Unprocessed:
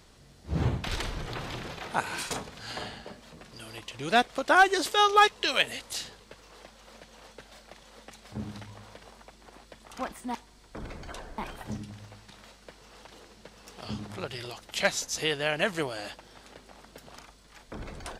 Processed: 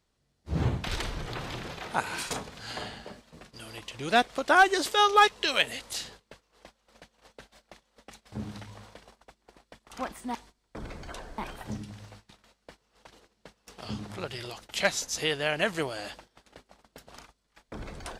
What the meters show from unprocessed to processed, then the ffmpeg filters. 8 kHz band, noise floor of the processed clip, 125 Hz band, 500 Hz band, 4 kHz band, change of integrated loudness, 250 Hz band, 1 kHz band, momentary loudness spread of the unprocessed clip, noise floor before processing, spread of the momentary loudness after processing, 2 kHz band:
0.0 dB, −75 dBFS, 0.0 dB, 0.0 dB, 0.0 dB, 0.0 dB, 0.0 dB, 0.0 dB, 23 LU, −56 dBFS, 22 LU, 0.0 dB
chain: -af "agate=range=-19dB:threshold=-49dB:ratio=16:detection=peak"

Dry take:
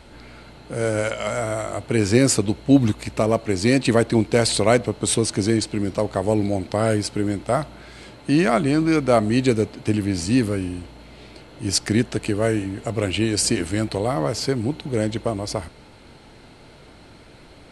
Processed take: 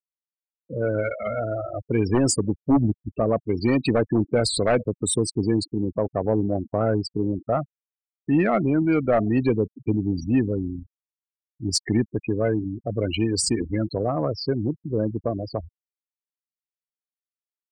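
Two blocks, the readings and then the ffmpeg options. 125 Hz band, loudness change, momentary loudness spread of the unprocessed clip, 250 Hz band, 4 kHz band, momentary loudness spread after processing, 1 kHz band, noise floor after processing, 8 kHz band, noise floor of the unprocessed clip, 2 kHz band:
−2.5 dB, −2.5 dB, 9 LU, −2.5 dB, −4.5 dB, 8 LU, −3.5 dB, below −85 dBFS, −4.5 dB, −47 dBFS, −6.5 dB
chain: -af "aeval=exprs='0.376*(abs(mod(val(0)/0.376+3,4)-2)-1)':channel_layout=same,afftfilt=real='re*gte(hypot(re,im),0.112)':imag='im*gte(hypot(re,im),0.112)':win_size=1024:overlap=0.75,acontrast=48,volume=-7dB"

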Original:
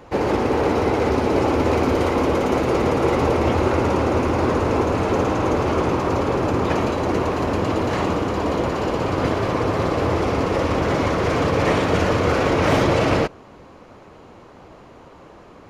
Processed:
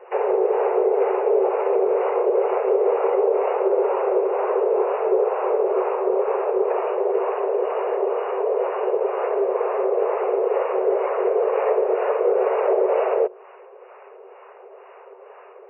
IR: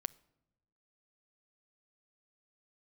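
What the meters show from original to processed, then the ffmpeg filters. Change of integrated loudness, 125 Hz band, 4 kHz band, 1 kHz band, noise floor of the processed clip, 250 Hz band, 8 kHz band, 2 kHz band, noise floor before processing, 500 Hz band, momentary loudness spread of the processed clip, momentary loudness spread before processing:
−1.0 dB, below −40 dB, below −15 dB, −3.0 dB, −46 dBFS, below −10 dB, below −40 dB, −10.5 dB, −45 dBFS, +2.5 dB, 3 LU, 3 LU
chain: -filter_complex "[0:a]lowshelf=frequency=490:gain=11,acrossover=split=950[link_01][link_02];[link_02]acompressor=threshold=-36dB:ratio=12[link_03];[link_01][link_03]amix=inputs=2:normalize=0,afftfilt=real='re*between(b*sr/4096,370,2900)':imag='im*between(b*sr/4096,370,2900)':win_size=4096:overlap=0.75,acrossover=split=620[link_04][link_05];[link_04]aeval=exprs='val(0)*(1-0.7/2+0.7/2*cos(2*PI*2.1*n/s))':channel_layout=same[link_06];[link_05]aeval=exprs='val(0)*(1-0.7/2-0.7/2*cos(2*PI*2.1*n/s))':channel_layout=same[link_07];[link_06][link_07]amix=inputs=2:normalize=0,alimiter=level_in=10.5dB:limit=-1dB:release=50:level=0:latency=1,volume=-9dB"

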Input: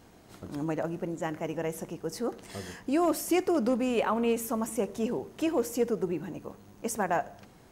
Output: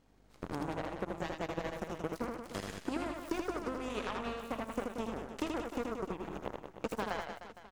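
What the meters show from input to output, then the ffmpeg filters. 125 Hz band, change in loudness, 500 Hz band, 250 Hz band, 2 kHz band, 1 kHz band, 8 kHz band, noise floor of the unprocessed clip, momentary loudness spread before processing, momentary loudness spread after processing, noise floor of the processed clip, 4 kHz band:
−5.5 dB, −9.0 dB, −9.5 dB, −9.5 dB, −4.0 dB, −6.0 dB, −14.0 dB, −55 dBFS, 14 LU, 5 LU, −62 dBFS, −4.0 dB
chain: -filter_complex "[0:a]highshelf=frequency=8200:gain=-8.5,acompressor=threshold=-37dB:ratio=12,aeval=exprs='val(0)+0.00158*(sin(2*PI*50*n/s)+sin(2*PI*2*50*n/s)/2+sin(2*PI*3*50*n/s)/3+sin(2*PI*4*50*n/s)/4+sin(2*PI*5*50*n/s)/5)':channel_layout=same,aeval=exprs='0.0501*(cos(1*acos(clip(val(0)/0.0501,-1,1)))-cos(1*PI/2))+0.00501*(cos(3*acos(clip(val(0)/0.0501,-1,1)))-cos(3*PI/2))+0.000708*(cos(5*acos(clip(val(0)/0.0501,-1,1)))-cos(5*PI/2))+0.00631*(cos(7*acos(clip(val(0)/0.0501,-1,1)))-cos(7*PI/2))+0.00126*(cos(8*acos(clip(val(0)/0.0501,-1,1)))-cos(8*PI/2))':channel_layout=same,asplit=2[link_01][link_02];[link_02]aecho=0:1:80|180|305|461.2|656.6:0.631|0.398|0.251|0.158|0.1[link_03];[link_01][link_03]amix=inputs=2:normalize=0,volume=5.5dB"

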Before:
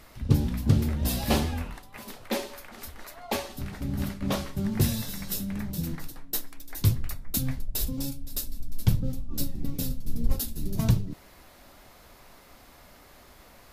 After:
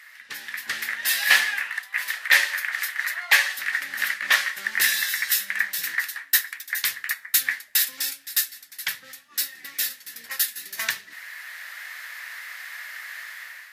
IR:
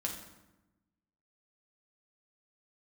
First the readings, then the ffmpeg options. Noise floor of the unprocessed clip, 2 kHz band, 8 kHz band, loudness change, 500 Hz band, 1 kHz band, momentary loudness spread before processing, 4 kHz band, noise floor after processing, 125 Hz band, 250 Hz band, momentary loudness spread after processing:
−53 dBFS, +22.5 dB, +10.0 dB, +6.5 dB, −10.5 dB, +3.0 dB, 15 LU, +12.0 dB, −50 dBFS, below −35 dB, below −25 dB, 17 LU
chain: -filter_complex "[0:a]dynaudnorm=framelen=210:gausssize=5:maxgain=11dB,highpass=frequency=1800:width_type=q:width=7.6,asplit=2[link_01][link_02];[1:a]atrim=start_sample=2205,asetrate=48510,aresample=44100[link_03];[link_02][link_03]afir=irnorm=-1:irlink=0,volume=-20dB[link_04];[link_01][link_04]amix=inputs=2:normalize=0"

